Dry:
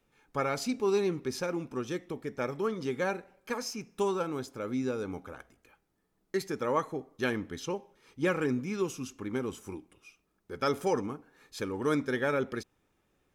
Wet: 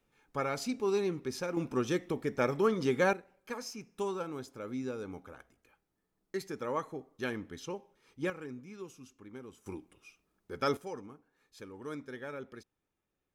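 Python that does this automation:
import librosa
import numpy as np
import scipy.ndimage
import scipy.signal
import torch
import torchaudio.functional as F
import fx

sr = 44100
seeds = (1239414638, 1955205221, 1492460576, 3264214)

y = fx.gain(x, sr, db=fx.steps((0.0, -3.0), (1.57, 3.5), (3.13, -5.5), (8.3, -14.0), (9.66, -1.5), (10.77, -13.0)))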